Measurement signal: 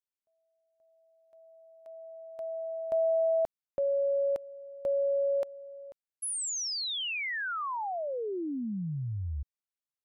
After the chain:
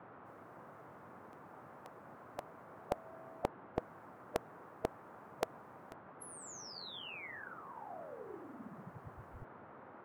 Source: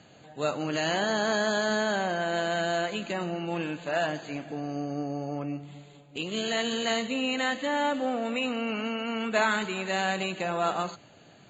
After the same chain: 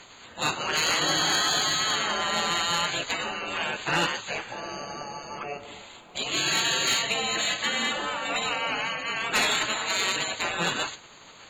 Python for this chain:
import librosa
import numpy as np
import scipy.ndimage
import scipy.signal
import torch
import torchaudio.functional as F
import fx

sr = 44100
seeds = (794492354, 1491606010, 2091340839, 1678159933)

y = fx.spec_gate(x, sr, threshold_db=-15, keep='weak')
y = fx.fold_sine(y, sr, drive_db=7, ceiling_db=-19.5)
y = fx.dmg_noise_band(y, sr, seeds[0], low_hz=100.0, high_hz=1300.0, level_db=-57.0)
y = F.gain(torch.from_numpy(y), 2.0).numpy()